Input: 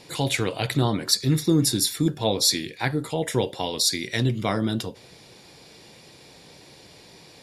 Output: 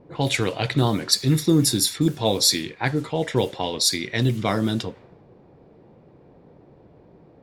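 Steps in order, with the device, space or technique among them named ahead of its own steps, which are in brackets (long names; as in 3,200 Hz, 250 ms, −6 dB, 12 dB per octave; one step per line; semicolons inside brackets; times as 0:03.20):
cassette deck with a dynamic noise filter (white noise bed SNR 24 dB; low-pass that shuts in the quiet parts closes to 500 Hz, open at −19 dBFS)
level +2 dB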